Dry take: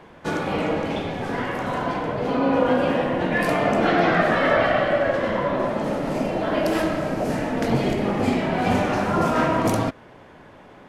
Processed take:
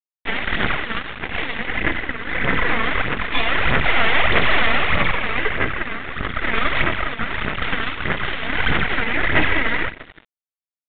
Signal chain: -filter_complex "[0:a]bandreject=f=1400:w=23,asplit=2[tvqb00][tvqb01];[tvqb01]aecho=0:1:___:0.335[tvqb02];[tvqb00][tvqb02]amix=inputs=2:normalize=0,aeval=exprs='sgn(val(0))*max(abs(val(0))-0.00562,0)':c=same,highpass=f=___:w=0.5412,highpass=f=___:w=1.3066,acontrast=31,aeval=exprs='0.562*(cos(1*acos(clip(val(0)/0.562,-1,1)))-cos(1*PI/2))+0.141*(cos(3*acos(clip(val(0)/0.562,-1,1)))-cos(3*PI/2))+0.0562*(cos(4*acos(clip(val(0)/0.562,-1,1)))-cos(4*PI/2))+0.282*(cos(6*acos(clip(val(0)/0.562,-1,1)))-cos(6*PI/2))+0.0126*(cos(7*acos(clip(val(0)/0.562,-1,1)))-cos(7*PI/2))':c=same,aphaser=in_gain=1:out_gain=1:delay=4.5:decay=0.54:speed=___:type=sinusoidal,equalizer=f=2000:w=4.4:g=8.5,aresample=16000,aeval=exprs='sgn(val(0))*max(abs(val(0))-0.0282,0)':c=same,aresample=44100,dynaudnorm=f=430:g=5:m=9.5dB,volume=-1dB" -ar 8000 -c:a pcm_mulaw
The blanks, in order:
354, 640, 640, 1.6